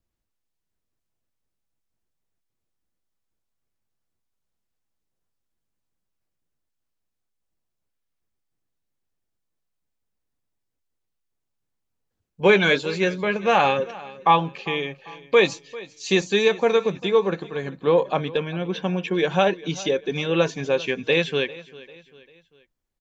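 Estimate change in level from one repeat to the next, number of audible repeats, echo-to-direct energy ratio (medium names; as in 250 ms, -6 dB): -7.5 dB, 3, -18.5 dB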